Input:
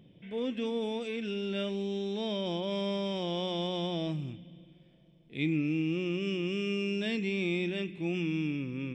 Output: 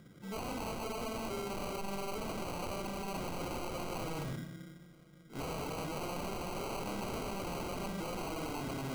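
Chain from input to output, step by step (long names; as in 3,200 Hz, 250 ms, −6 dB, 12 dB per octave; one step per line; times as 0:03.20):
four-comb reverb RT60 0.81 s, combs from 31 ms, DRR 2.5 dB
tube saturation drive 21 dB, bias 0.6
decimation without filtering 25×
wave folding −37.5 dBFS
level +3.5 dB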